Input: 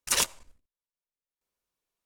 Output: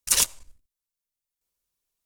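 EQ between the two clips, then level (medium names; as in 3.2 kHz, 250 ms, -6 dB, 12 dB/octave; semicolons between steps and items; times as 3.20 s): bass shelf 140 Hz +10.5 dB; treble shelf 3.7 kHz +12 dB; -4.0 dB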